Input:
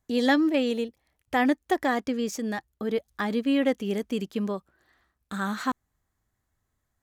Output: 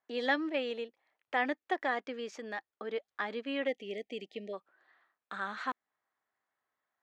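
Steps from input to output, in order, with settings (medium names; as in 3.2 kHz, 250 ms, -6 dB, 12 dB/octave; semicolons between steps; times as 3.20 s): spectral selection erased 3.67–4.53 s, 790–1800 Hz; dynamic bell 1 kHz, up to -6 dB, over -40 dBFS, Q 0.78; band-pass 610–2600 Hz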